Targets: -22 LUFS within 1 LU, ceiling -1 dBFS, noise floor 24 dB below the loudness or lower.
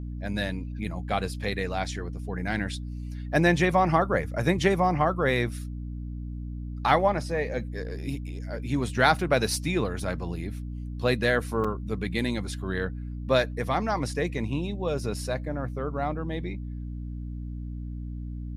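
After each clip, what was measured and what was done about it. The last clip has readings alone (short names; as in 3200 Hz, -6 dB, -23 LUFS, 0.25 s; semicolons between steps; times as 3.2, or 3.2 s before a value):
dropouts 1; longest dropout 4.9 ms; hum 60 Hz; harmonics up to 300 Hz; hum level -32 dBFS; loudness -28.0 LUFS; peak -6.0 dBFS; loudness target -22.0 LUFS
-> interpolate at 11.64, 4.9 ms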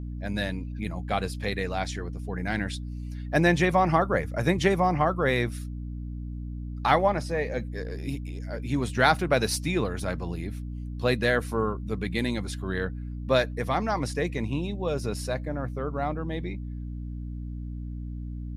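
dropouts 0; hum 60 Hz; harmonics up to 300 Hz; hum level -32 dBFS
-> notches 60/120/180/240/300 Hz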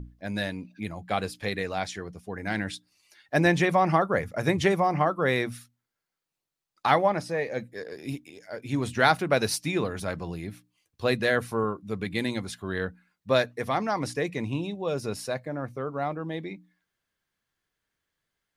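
hum none; loudness -28.0 LUFS; peak -6.0 dBFS; loudness target -22.0 LUFS
-> gain +6 dB; limiter -1 dBFS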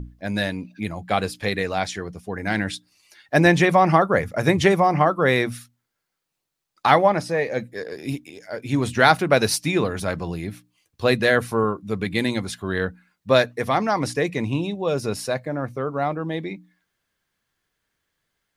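loudness -22.0 LUFS; peak -1.0 dBFS; noise floor -80 dBFS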